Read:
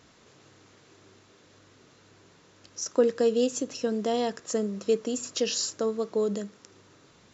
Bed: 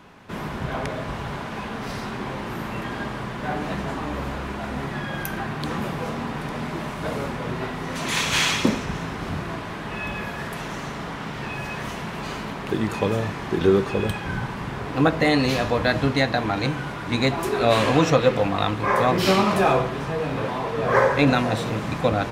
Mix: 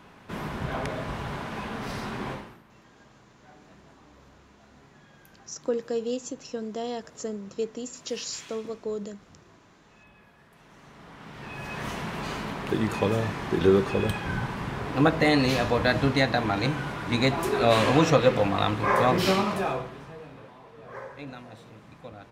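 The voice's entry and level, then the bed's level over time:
2.70 s, −5.5 dB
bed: 0:02.32 −3 dB
0:02.63 −26 dB
0:10.48 −26 dB
0:11.88 −2 dB
0:19.15 −2 dB
0:20.55 −22.5 dB

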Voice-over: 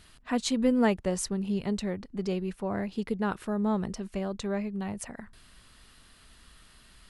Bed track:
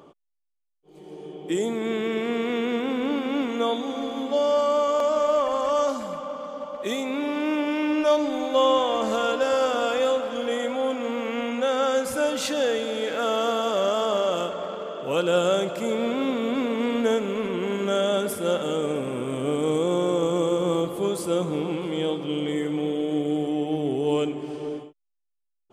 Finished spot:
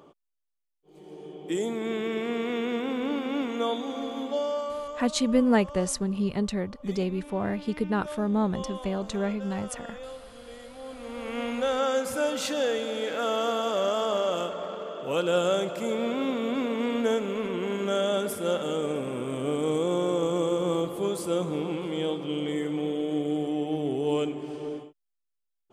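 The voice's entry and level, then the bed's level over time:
4.70 s, +2.5 dB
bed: 0:04.24 −3.5 dB
0:05.18 −18.5 dB
0:10.73 −18.5 dB
0:11.42 −3 dB

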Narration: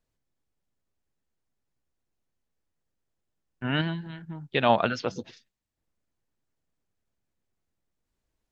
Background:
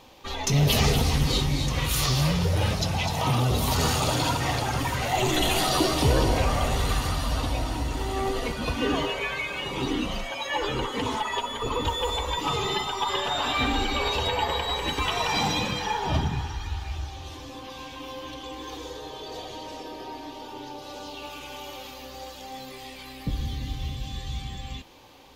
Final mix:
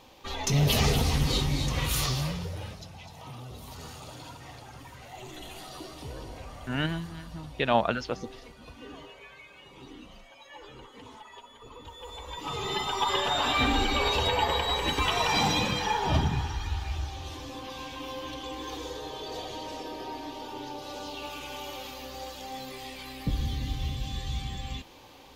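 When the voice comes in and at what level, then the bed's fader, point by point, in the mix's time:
3.05 s, −2.5 dB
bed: 0:01.97 −2.5 dB
0:02.91 −19.5 dB
0:11.86 −19.5 dB
0:12.94 0 dB

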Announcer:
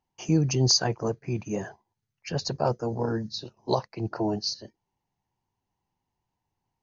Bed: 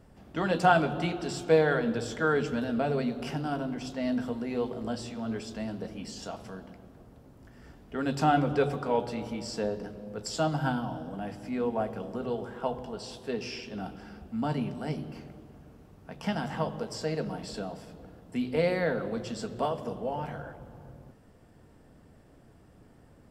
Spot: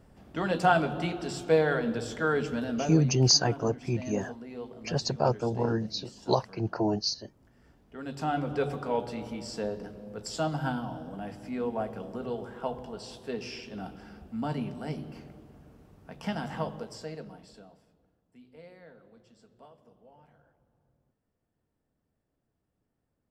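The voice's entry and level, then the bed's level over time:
2.60 s, 0.0 dB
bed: 0:02.73 −1 dB
0:03.13 −9.5 dB
0:07.96 −9.5 dB
0:08.73 −2 dB
0:16.66 −2 dB
0:18.21 −24 dB

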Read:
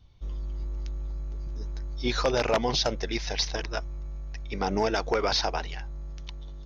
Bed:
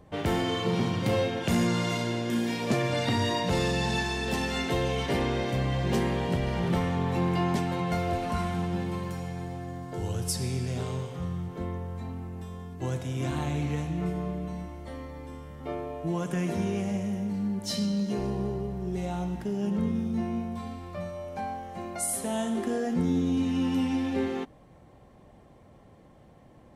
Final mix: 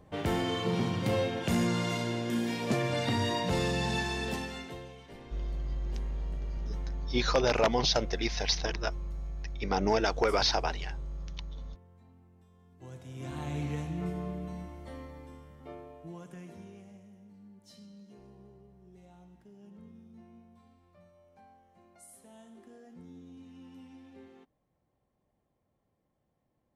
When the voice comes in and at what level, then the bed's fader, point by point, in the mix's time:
5.10 s, −1.0 dB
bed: 0:04.24 −3 dB
0:05.01 −22 dB
0:12.53 −22 dB
0:13.58 −4.5 dB
0:15.00 −4.5 dB
0:17.10 −24 dB

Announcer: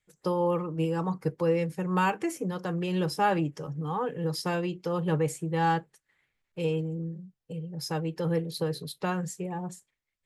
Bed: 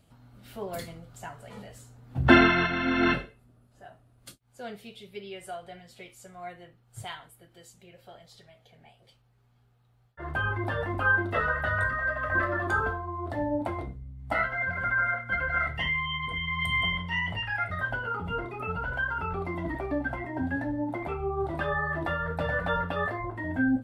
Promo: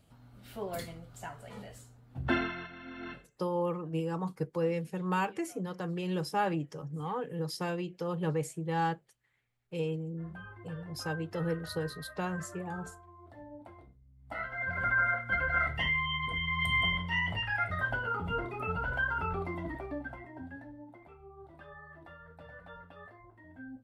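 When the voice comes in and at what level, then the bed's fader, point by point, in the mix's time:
3.15 s, −5.0 dB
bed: 0:01.75 −2 dB
0:02.72 −19.5 dB
0:14.03 −19.5 dB
0:14.80 −1.5 dB
0:19.29 −1.5 dB
0:21.08 −21.5 dB

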